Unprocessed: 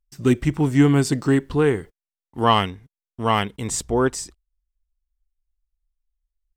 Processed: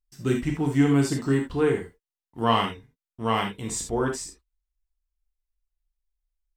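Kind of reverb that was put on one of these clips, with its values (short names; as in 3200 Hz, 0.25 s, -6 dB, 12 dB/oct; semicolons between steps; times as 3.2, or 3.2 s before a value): non-linear reverb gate 0.1 s flat, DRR 1 dB; gain -7 dB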